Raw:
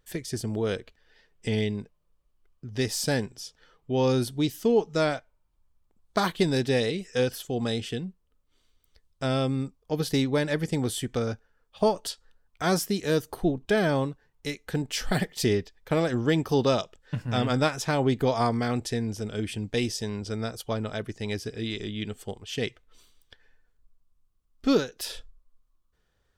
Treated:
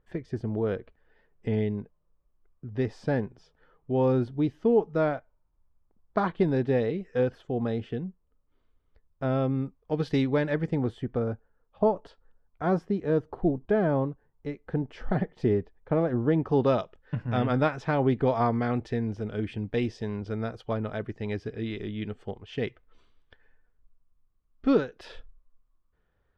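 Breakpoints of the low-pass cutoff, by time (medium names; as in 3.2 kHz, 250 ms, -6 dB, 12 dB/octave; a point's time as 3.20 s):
9.31 s 1.4 kHz
10.19 s 2.7 kHz
11.12 s 1.1 kHz
16.29 s 1.1 kHz
16.72 s 2 kHz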